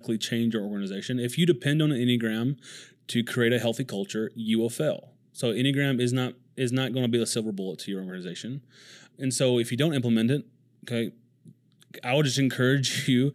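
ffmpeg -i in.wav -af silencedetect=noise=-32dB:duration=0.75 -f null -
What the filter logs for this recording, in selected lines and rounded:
silence_start: 11.09
silence_end: 11.94 | silence_duration: 0.85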